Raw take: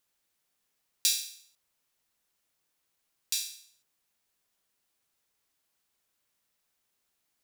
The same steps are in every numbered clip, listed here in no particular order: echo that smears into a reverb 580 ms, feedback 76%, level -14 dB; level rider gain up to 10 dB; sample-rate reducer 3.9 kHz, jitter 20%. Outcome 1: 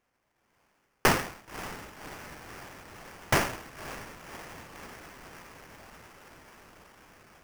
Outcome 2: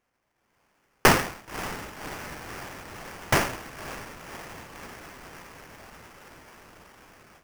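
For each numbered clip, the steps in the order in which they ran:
level rider > echo that smears into a reverb > sample-rate reducer; echo that smears into a reverb > sample-rate reducer > level rider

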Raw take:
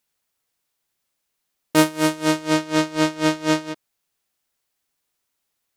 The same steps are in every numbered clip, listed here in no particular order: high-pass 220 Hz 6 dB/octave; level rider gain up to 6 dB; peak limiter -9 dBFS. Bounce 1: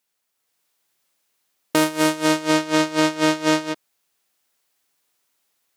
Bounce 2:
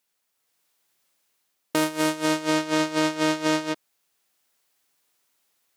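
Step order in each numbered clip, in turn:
high-pass > peak limiter > level rider; level rider > high-pass > peak limiter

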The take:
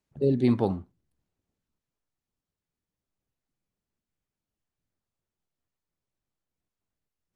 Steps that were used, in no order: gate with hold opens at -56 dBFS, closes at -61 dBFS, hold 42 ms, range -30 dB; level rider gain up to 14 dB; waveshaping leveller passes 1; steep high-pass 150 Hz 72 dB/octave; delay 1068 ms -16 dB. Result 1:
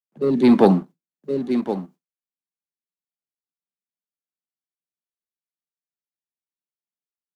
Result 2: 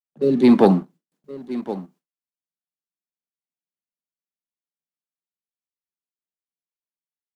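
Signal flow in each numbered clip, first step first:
delay > gate with hold > steep high-pass > waveshaping leveller > level rider; steep high-pass > level rider > delay > gate with hold > waveshaping leveller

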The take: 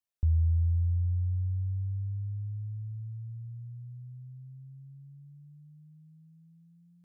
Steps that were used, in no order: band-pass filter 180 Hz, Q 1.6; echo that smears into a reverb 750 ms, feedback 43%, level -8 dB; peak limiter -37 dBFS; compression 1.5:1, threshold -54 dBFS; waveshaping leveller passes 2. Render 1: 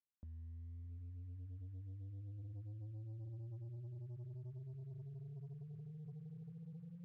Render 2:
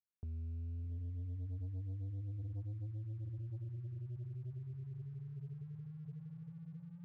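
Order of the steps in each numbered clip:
peak limiter > echo that smears into a reverb > compression > band-pass filter > waveshaping leveller; band-pass filter > peak limiter > compression > echo that smears into a reverb > waveshaping leveller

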